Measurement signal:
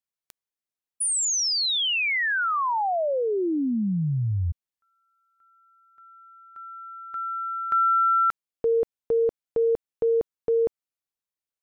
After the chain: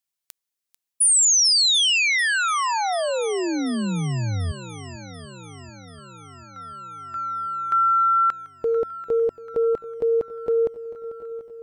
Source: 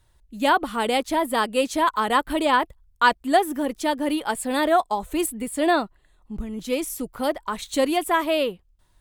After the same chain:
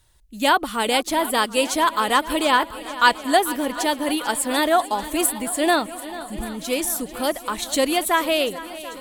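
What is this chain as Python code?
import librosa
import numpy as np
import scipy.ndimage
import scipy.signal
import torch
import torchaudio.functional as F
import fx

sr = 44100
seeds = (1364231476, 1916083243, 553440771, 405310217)

p1 = fx.high_shelf(x, sr, hz=2400.0, db=8.5)
y = p1 + fx.echo_swing(p1, sr, ms=738, ratio=1.5, feedback_pct=60, wet_db=-16, dry=0)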